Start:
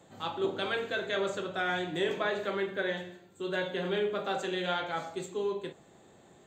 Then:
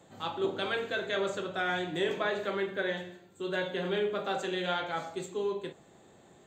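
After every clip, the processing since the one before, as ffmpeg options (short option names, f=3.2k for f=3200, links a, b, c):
-af anull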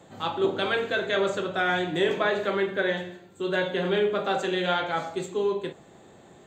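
-af "highshelf=f=5.4k:g=-4.5,volume=6.5dB"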